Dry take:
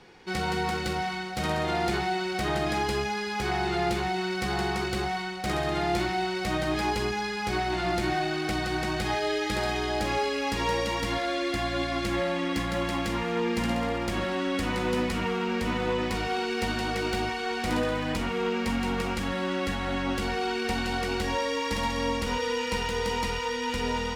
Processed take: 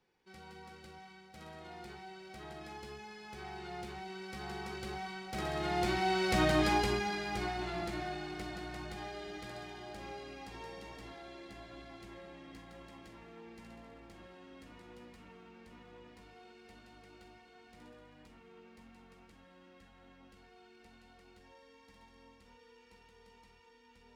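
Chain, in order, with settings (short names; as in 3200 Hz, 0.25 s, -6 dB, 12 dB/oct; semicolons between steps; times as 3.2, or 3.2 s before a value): Doppler pass-by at 6.45, 7 m/s, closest 2.7 m; on a send: darkening echo 0.737 s, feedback 79%, low-pass 2000 Hz, level -19.5 dB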